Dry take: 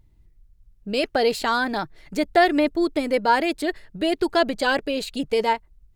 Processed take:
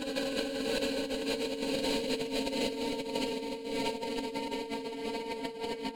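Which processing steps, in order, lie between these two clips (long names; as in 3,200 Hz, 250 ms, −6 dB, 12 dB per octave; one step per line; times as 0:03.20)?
extreme stretch with random phases 25×, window 1.00 s, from 0:05.04
compressor whose output falls as the input rises −29 dBFS, ratio −0.5
level −4.5 dB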